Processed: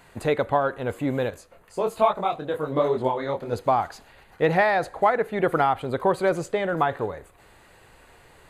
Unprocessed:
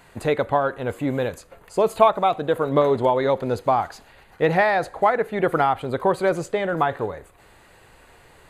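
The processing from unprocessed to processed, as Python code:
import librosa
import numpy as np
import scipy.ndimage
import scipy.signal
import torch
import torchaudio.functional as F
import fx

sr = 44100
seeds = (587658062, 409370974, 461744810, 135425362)

y = fx.detune_double(x, sr, cents=43, at=(1.3, 3.53))
y = F.gain(torch.from_numpy(y), -1.5).numpy()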